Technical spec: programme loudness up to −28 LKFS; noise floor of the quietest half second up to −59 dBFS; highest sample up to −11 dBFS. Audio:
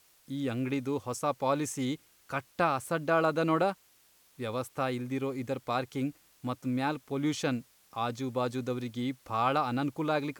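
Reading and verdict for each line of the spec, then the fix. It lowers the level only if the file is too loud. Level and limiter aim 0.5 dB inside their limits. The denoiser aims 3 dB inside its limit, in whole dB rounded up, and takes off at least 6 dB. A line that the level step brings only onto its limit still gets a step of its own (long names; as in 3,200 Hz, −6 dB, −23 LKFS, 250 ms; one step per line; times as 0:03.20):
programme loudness −32.0 LKFS: in spec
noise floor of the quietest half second −64 dBFS: in spec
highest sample −14.5 dBFS: in spec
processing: no processing needed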